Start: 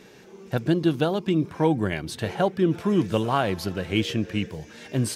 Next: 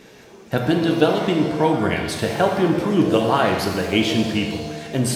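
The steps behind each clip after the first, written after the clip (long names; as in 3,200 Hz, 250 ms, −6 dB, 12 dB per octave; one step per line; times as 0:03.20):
harmonic and percussive parts rebalanced percussive +6 dB
reverb with rising layers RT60 1.2 s, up +7 semitones, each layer −8 dB, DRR 2.5 dB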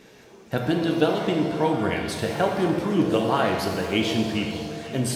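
delay that swaps between a low-pass and a high-pass 252 ms, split 980 Hz, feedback 70%, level −12 dB
level −4.5 dB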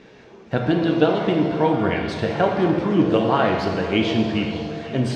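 high-frequency loss of the air 160 metres
level +4 dB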